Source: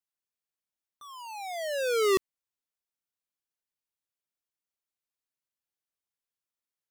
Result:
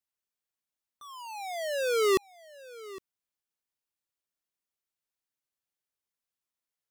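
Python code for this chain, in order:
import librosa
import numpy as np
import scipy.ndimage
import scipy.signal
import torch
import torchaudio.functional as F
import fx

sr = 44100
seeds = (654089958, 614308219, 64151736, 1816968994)

y = x + 10.0 ** (-19.0 / 20.0) * np.pad(x, (int(811 * sr / 1000.0), 0))[:len(x)]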